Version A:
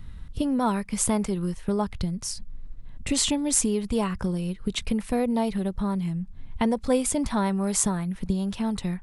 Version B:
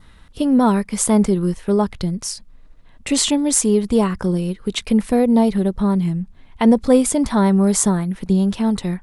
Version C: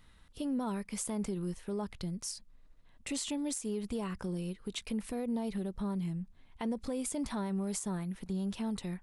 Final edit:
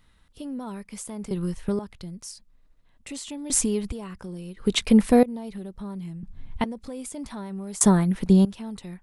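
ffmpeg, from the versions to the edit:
-filter_complex "[0:a]asplit=3[a][b][c];[1:a]asplit=2[d][e];[2:a]asplit=6[f][g][h][i][j][k];[f]atrim=end=1.312[l];[a]atrim=start=1.308:end=1.792[m];[g]atrim=start=1.788:end=3.502[n];[b]atrim=start=3.498:end=3.922[o];[h]atrim=start=3.918:end=4.572[p];[d]atrim=start=4.568:end=5.232[q];[i]atrim=start=5.228:end=6.232[r];[c]atrim=start=6.228:end=6.642[s];[j]atrim=start=6.638:end=7.812[t];[e]atrim=start=7.808:end=8.452[u];[k]atrim=start=8.448[v];[l][m]acrossfade=d=0.004:c1=hsin:c2=hsin[w];[w][n]acrossfade=d=0.004:c1=hsin:c2=hsin[x];[x][o]acrossfade=d=0.004:c1=hsin:c2=hsin[y];[y][p]acrossfade=d=0.004:c1=hsin:c2=hsin[z];[z][q]acrossfade=d=0.004:c1=hsin:c2=hsin[aa];[aa][r]acrossfade=d=0.004:c1=hsin:c2=hsin[ab];[ab][s]acrossfade=d=0.004:c1=hsin:c2=hsin[ac];[ac][t]acrossfade=d=0.004:c1=hsin:c2=hsin[ad];[ad][u]acrossfade=d=0.004:c1=hsin:c2=hsin[ae];[ae][v]acrossfade=d=0.004:c1=hsin:c2=hsin"

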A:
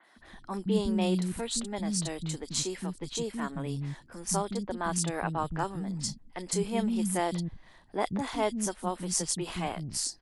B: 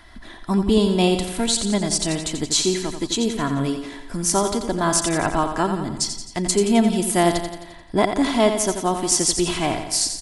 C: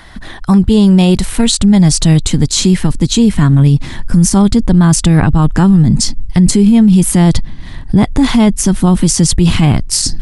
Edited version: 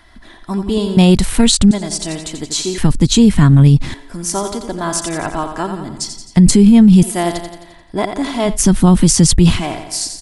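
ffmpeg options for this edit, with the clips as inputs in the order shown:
-filter_complex "[2:a]asplit=4[a][b][c][d];[1:a]asplit=5[e][f][g][h][i];[e]atrim=end=0.972[j];[a]atrim=start=0.968:end=1.712[k];[f]atrim=start=1.708:end=2.782[l];[b]atrim=start=2.778:end=3.942[m];[g]atrim=start=3.938:end=6.372[n];[c]atrim=start=6.368:end=7.032[o];[h]atrim=start=7.028:end=8.59[p];[d]atrim=start=8.43:end=9.64[q];[i]atrim=start=9.48[r];[j][k]acrossfade=d=0.004:c1=hsin:c2=hsin[s];[s][l]acrossfade=d=0.004:c1=hsin:c2=hsin[t];[t][m]acrossfade=d=0.004:c1=hsin:c2=hsin[u];[u][n]acrossfade=d=0.004:c1=hsin:c2=hsin[v];[v][o]acrossfade=d=0.004:c1=hsin:c2=hsin[w];[w][p]acrossfade=d=0.004:c1=hsin:c2=hsin[x];[x][q]acrossfade=d=0.16:c1=tri:c2=tri[y];[y][r]acrossfade=d=0.16:c1=tri:c2=tri"

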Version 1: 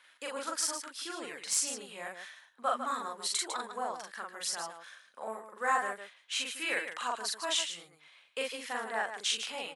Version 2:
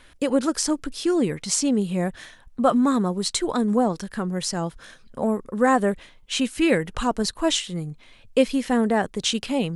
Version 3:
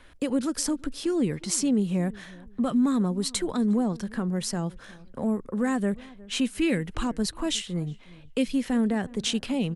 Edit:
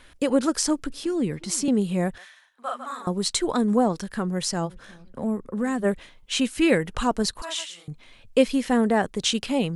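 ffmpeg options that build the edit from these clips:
-filter_complex "[2:a]asplit=2[a][b];[0:a]asplit=2[c][d];[1:a]asplit=5[e][f][g][h][i];[e]atrim=end=0.902[j];[a]atrim=start=0.898:end=1.682[k];[f]atrim=start=1.678:end=2.182[l];[c]atrim=start=2.178:end=3.072[m];[g]atrim=start=3.068:end=4.71[n];[b]atrim=start=4.65:end=5.86[o];[h]atrim=start=5.8:end=7.422[p];[d]atrim=start=7.418:end=7.882[q];[i]atrim=start=7.878[r];[j][k]acrossfade=d=0.004:c1=hsin:c2=hsin[s];[s][l]acrossfade=d=0.004:c1=hsin:c2=hsin[t];[t][m]acrossfade=d=0.004:c1=hsin:c2=hsin[u];[u][n]acrossfade=d=0.004:c1=hsin:c2=hsin[v];[v][o]acrossfade=d=0.06:c1=tri:c2=tri[w];[w][p]acrossfade=d=0.06:c1=tri:c2=tri[x];[x][q]acrossfade=d=0.004:c1=hsin:c2=hsin[y];[y][r]acrossfade=d=0.004:c1=hsin:c2=hsin"

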